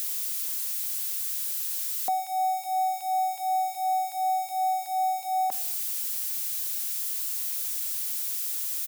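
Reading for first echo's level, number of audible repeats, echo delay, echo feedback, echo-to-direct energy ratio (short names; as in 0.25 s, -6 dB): -21.5 dB, 2, 0.122 s, 31%, -21.0 dB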